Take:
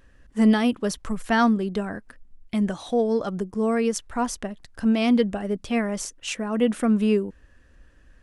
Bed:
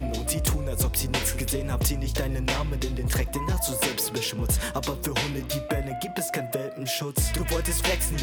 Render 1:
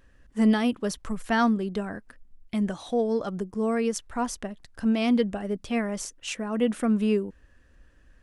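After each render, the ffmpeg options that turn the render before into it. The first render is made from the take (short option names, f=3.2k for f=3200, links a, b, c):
-af "volume=-3dB"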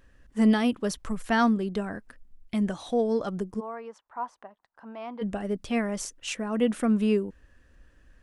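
-filter_complex "[0:a]asplit=3[a][b][c];[a]afade=t=out:st=3.59:d=0.02[d];[b]bandpass=f=940:t=q:w=2.9,afade=t=in:st=3.59:d=0.02,afade=t=out:st=5.21:d=0.02[e];[c]afade=t=in:st=5.21:d=0.02[f];[d][e][f]amix=inputs=3:normalize=0"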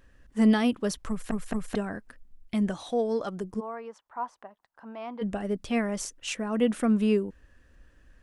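-filter_complex "[0:a]asettb=1/sr,asplit=3[a][b][c];[a]atrim=end=2.834[d];[b]atrim=start=2.83:end=3.44,asetpts=PTS-STARTPTS,afade=t=in:d=0.004:c=qsin,afade=t=out:st=0.606:d=0.004:c=qsin,lowshelf=f=220:g=-8[e];[c]atrim=start=3.436[f];[d][e]acrossfade=d=0.004:c1=hsin:c2=qsin[g];[g][f]acrossfade=d=0.004:c1=qsin:c2=hsin,asplit=4[h][i][j][k];[h]atrim=end=1.312[l];[i]atrim=start=1.088:end=1.312[m];[j]atrim=start=1.088:end=1.312[n];[k]atrim=start=1.748[o];[l][m]acrossfade=d=0.004:c1=hsin:c2=hsin[p];[p][n]acrossfade=d=0.004:c1=hsin:c2=hsin[q];[q][o]acrossfade=d=0.004:c1=hsin:c2=hsin"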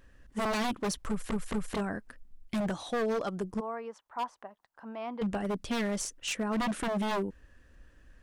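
-af "aeval=exprs='0.0562*(abs(mod(val(0)/0.0562+3,4)-2)-1)':c=same"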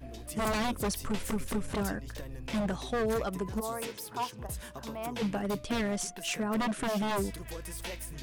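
-filter_complex "[1:a]volume=-15dB[a];[0:a][a]amix=inputs=2:normalize=0"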